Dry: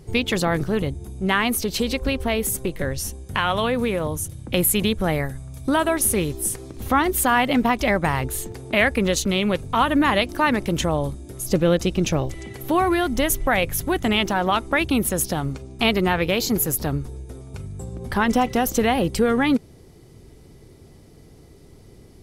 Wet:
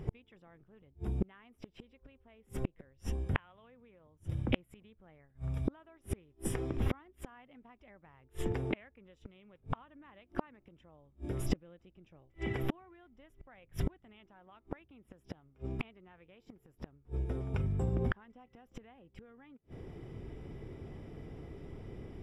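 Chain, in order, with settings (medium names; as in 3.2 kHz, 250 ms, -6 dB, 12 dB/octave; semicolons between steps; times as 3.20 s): Savitzky-Golay filter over 25 samples; inverted gate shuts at -20 dBFS, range -39 dB; trim +1 dB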